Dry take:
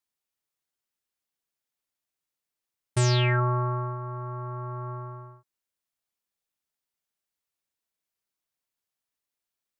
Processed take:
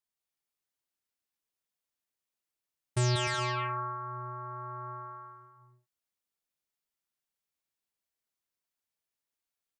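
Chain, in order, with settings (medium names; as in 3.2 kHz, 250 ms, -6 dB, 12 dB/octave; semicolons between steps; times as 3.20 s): on a send: bouncing-ball echo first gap 190 ms, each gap 0.6×, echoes 5; on the sum: trim -5 dB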